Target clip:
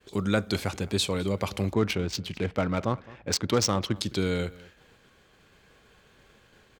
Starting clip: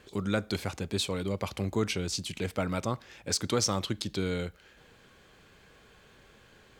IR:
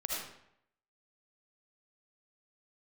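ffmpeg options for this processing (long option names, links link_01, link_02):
-filter_complex "[0:a]agate=range=-33dB:threshold=-52dB:ratio=3:detection=peak,asettb=1/sr,asplit=3[link_01][link_02][link_03];[link_01]atrim=end=1.734[link_04];[link_02]atrim=start=1.73:end=3.96,asetpts=PTS-STARTPTS,afade=type=in:duration=0.004:curve=qsin,afade=type=out:start_time=2.226:duration=0.004:curve=qsin,adynamicsmooth=sensitivity=5:basefreq=1800[link_05];[link_03]atrim=start=3.956[link_06];[link_04][link_05]acrossfade=duration=0.004:curve1=hsin:curve2=qsin[link_07];[link_07][link_06]acrossfade=duration=0.004:curve1=qsin:curve2=hsin,asplit=2[link_08][link_09];[link_09]adelay=209.9,volume=-21dB,highshelf=frequency=4000:gain=-4.72[link_10];[link_08][link_10]amix=inputs=2:normalize=0,volume=4dB"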